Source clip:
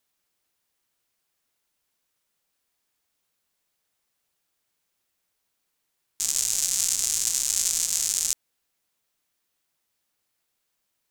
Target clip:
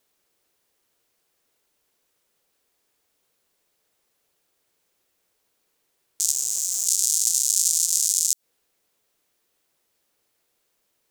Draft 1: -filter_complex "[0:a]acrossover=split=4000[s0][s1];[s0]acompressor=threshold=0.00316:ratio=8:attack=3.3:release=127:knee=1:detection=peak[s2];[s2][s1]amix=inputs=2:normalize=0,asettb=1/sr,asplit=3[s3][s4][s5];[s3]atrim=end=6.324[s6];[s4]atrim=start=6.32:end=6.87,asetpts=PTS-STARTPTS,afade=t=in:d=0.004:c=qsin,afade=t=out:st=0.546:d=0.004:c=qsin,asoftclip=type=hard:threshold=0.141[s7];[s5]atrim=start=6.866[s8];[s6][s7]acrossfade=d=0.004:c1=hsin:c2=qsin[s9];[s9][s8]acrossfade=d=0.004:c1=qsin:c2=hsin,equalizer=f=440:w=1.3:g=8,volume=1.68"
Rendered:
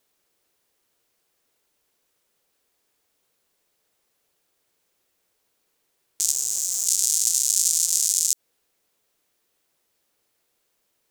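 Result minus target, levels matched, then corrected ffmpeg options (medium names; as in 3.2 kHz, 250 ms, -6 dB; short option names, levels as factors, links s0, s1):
compression: peak gain reduction -8.5 dB
-filter_complex "[0:a]acrossover=split=4000[s0][s1];[s0]acompressor=threshold=0.00106:ratio=8:attack=3.3:release=127:knee=1:detection=peak[s2];[s2][s1]amix=inputs=2:normalize=0,asettb=1/sr,asplit=3[s3][s4][s5];[s3]atrim=end=6.324[s6];[s4]atrim=start=6.32:end=6.87,asetpts=PTS-STARTPTS,afade=t=in:d=0.004:c=qsin,afade=t=out:st=0.546:d=0.004:c=qsin,asoftclip=type=hard:threshold=0.141[s7];[s5]atrim=start=6.866[s8];[s6][s7]acrossfade=d=0.004:c1=hsin:c2=qsin[s9];[s9][s8]acrossfade=d=0.004:c1=qsin:c2=hsin,equalizer=f=440:w=1.3:g=8,volume=1.68"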